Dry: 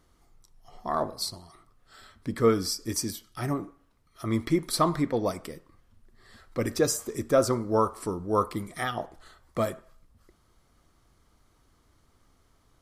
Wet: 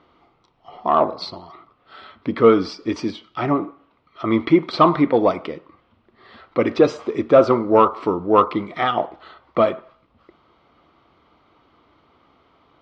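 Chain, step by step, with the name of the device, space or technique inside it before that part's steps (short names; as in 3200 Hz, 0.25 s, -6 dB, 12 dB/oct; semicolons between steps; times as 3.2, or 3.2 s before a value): overdrive pedal into a guitar cabinet (overdrive pedal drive 12 dB, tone 2800 Hz, clips at -10 dBFS; speaker cabinet 82–3500 Hz, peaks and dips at 110 Hz -4 dB, 310 Hz +3 dB, 1700 Hz -10 dB); gain +8.5 dB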